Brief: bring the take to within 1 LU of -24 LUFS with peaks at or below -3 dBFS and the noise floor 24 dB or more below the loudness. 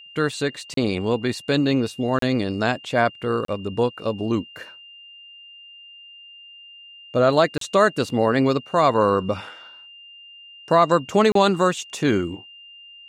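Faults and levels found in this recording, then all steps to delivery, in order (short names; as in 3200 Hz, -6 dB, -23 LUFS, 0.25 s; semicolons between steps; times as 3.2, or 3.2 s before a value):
dropouts 5; longest dropout 33 ms; steady tone 2800 Hz; tone level -42 dBFS; loudness -21.5 LUFS; peak -4.5 dBFS; loudness target -24.0 LUFS
-> interpolate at 0.74/2.19/3.45/7.58/11.32, 33 ms; notch 2800 Hz, Q 30; gain -2.5 dB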